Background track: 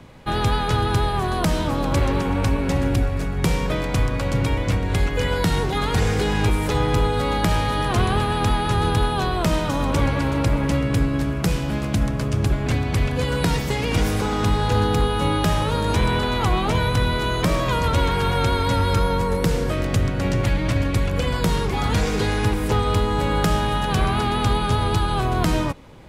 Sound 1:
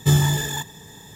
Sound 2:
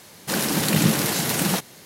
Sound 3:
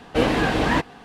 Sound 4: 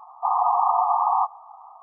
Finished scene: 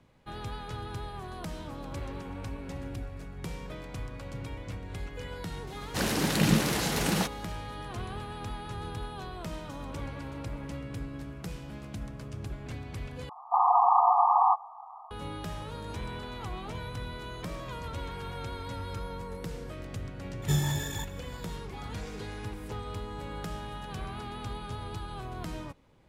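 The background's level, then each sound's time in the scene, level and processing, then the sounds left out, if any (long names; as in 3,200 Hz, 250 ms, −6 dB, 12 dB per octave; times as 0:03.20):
background track −18 dB
0:05.67: mix in 2 −4.5 dB + high-shelf EQ 9,500 Hz −12 dB
0:13.29: overwrite with 4 −1.5 dB
0:20.42: mix in 1 −10.5 dB
not used: 3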